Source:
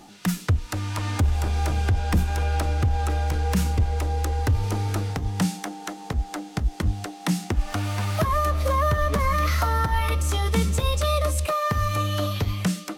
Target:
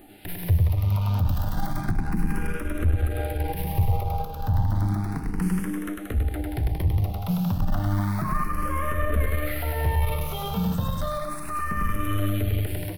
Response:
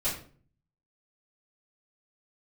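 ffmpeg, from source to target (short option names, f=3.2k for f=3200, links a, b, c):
-filter_complex "[0:a]aecho=1:1:100|180|244|295.2|336.2:0.631|0.398|0.251|0.158|0.1,asplit=2[a][b];[1:a]atrim=start_sample=2205[c];[b][c]afir=irnorm=-1:irlink=0,volume=-16.5dB[d];[a][d]amix=inputs=2:normalize=0,aexciter=amount=9.8:drive=6.7:freq=10k,alimiter=limit=-11.5dB:level=0:latency=1:release=157,asettb=1/sr,asplit=3[e][f][g];[e]atrim=end=1.294[h];[f]atrim=start=1.29:end=1.81,asetpts=PTS-STARTPTS,afade=t=in:d=0.004:c=qsin,afade=t=out:st=0.516:d=0.004:c=qsin,highshelf=f=4.9k:g=7[i];[g]atrim=start=1.806[j];[h][i]acrossfade=d=0.004:c1=hsin:c2=qsin[k];[k][j]acrossfade=d=0.004:c1=qsin:c2=hsin,aeval=exprs='(tanh(8.91*val(0)+0.5)-tanh(0.5))/8.91':c=same,bass=f=250:g=6,treble=f=4k:g=-13,asplit=2[l][m];[m]afreqshift=0.32[n];[l][n]amix=inputs=2:normalize=1,volume=1.5dB"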